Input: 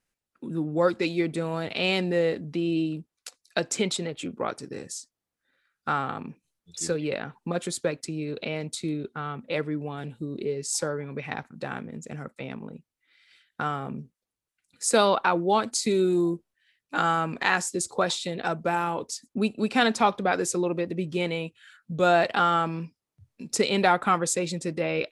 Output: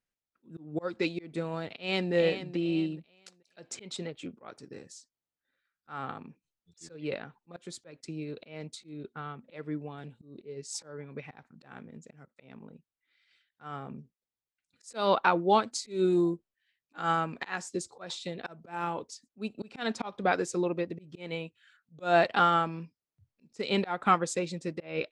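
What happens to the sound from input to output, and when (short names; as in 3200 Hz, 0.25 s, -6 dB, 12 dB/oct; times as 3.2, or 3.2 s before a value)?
1.68–2.13 echo throw 0.43 s, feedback 30%, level -8.5 dB
whole clip: LPF 6800 Hz 12 dB/oct; auto swell 0.184 s; upward expander 1.5:1, over -38 dBFS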